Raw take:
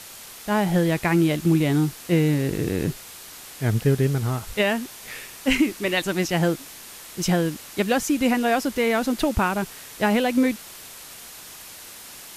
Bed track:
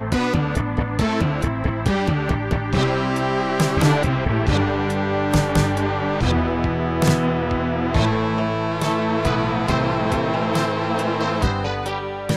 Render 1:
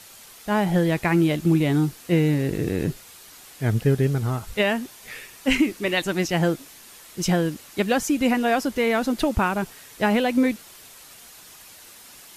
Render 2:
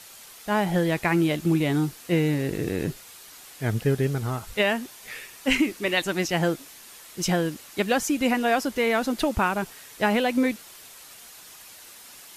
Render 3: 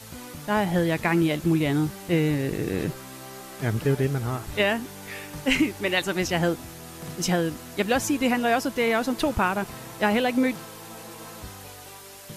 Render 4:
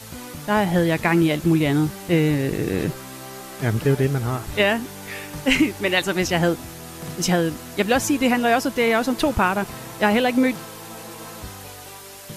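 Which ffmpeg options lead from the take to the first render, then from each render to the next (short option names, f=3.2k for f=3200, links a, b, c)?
-af "afftdn=nr=6:nf=-42"
-af "lowshelf=f=320:g=-5"
-filter_complex "[1:a]volume=-21dB[a];[0:a][a]amix=inputs=2:normalize=0"
-af "volume=4dB"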